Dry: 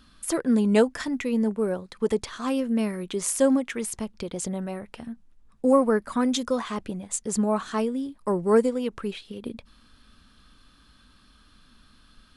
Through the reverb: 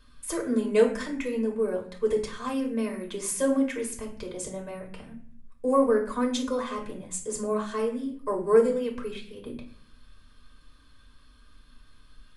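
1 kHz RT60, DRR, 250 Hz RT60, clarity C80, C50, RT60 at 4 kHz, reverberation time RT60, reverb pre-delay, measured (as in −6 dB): 0.45 s, 0.5 dB, 0.90 s, 13.5 dB, 9.5 dB, 0.35 s, 0.50 s, 3 ms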